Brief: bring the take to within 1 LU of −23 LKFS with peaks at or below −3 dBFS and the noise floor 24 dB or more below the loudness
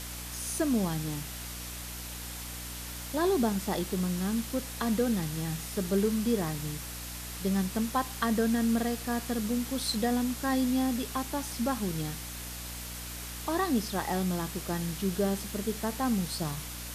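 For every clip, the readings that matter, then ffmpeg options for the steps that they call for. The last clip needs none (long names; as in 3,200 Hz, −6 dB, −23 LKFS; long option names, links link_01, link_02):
mains hum 60 Hz; hum harmonics up to 300 Hz; level of the hum −41 dBFS; background noise floor −40 dBFS; target noise floor −56 dBFS; integrated loudness −31.5 LKFS; sample peak −15.5 dBFS; target loudness −23.0 LKFS
→ -af "bandreject=frequency=60:width_type=h:width=4,bandreject=frequency=120:width_type=h:width=4,bandreject=frequency=180:width_type=h:width=4,bandreject=frequency=240:width_type=h:width=4,bandreject=frequency=300:width_type=h:width=4"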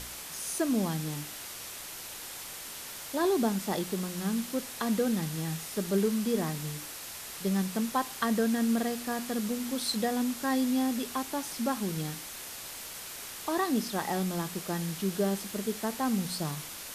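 mains hum none found; background noise floor −42 dBFS; target noise floor −56 dBFS
→ -af "afftdn=noise_reduction=14:noise_floor=-42"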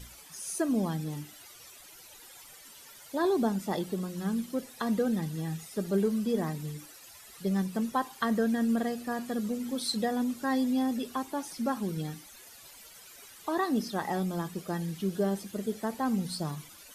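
background noise floor −52 dBFS; target noise floor −56 dBFS
→ -af "afftdn=noise_reduction=6:noise_floor=-52"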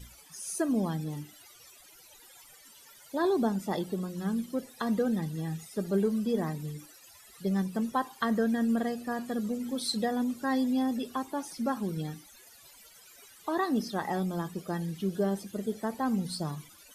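background noise floor −55 dBFS; target noise floor −56 dBFS
→ -af "afftdn=noise_reduction=6:noise_floor=-55"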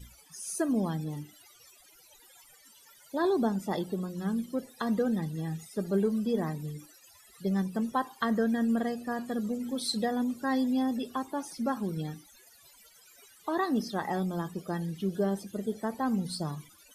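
background noise floor −58 dBFS; integrated loudness −31.5 LKFS; sample peak −15.5 dBFS; target loudness −23.0 LKFS
→ -af "volume=8.5dB"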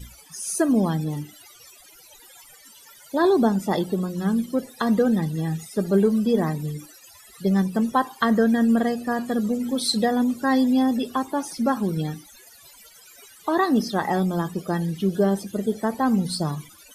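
integrated loudness −23.0 LKFS; sample peak −7.0 dBFS; background noise floor −50 dBFS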